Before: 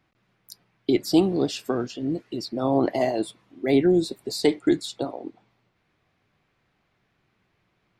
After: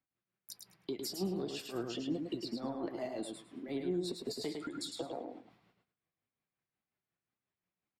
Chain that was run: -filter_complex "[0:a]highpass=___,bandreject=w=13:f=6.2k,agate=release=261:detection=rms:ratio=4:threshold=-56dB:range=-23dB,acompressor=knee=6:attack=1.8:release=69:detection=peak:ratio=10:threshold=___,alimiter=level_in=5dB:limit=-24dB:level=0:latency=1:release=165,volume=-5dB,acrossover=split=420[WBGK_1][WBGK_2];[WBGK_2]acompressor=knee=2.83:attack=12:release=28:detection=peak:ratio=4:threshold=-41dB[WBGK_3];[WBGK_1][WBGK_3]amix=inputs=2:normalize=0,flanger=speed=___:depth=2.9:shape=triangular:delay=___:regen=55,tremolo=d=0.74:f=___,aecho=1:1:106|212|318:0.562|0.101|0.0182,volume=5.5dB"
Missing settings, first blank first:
44, -27dB, 1.9, 3.4, 5.6